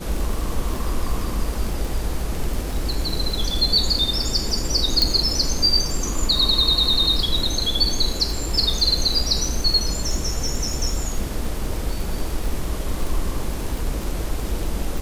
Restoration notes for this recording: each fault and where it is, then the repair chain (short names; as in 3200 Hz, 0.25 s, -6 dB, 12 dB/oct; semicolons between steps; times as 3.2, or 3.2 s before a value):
crackle 51/s -25 dBFS
5.02 pop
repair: de-click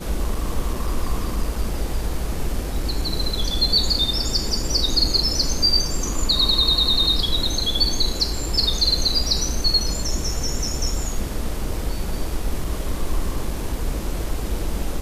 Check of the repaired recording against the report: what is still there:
none